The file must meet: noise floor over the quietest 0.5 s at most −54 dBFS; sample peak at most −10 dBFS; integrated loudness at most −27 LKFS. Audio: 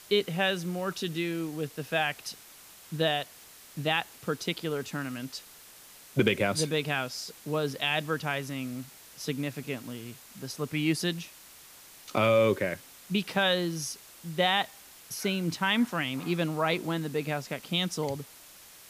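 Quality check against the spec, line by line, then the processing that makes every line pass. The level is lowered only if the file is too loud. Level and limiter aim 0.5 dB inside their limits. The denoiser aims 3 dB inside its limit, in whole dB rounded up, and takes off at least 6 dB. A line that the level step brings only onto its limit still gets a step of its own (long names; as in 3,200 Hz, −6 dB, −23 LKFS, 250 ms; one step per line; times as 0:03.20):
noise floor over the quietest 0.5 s −52 dBFS: out of spec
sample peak −12.0 dBFS: in spec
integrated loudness −30.0 LKFS: in spec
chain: broadband denoise 6 dB, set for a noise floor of −52 dBFS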